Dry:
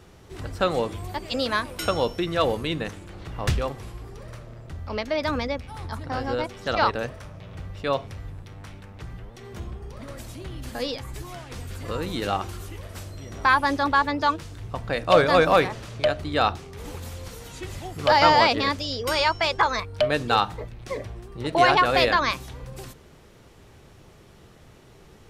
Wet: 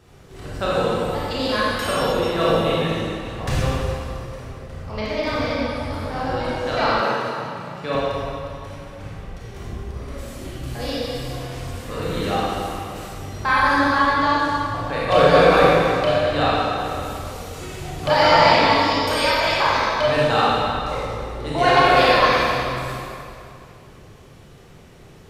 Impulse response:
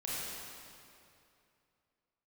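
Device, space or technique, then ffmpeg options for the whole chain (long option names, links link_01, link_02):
stairwell: -filter_complex "[1:a]atrim=start_sample=2205[link_01];[0:a][link_01]afir=irnorm=-1:irlink=0,asettb=1/sr,asplit=3[link_02][link_03][link_04];[link_02]atrim=end=7.014[link_05];[link_03]atrim=start=7.01:end=7.95,asetpts=PTS-STARTPTS,afade=type=in:duration=0.004:curve=qsin,afade=type=out:start_time=0.936:duration=0.004:curve=qsin,highpass=frequency=130:width=0.5412,highpass=frequency=130:width=1.3066[link_06];[link_04]atrim=start=7.946[link_07];[link_05][link_06]acrossfade=duration=0.004:curve1=hsin:curve2=qsin[link_08];[link_08][link_07]acrossfade=duration=0.004:curve1=qsin:curve2=hsin,volume=1dB"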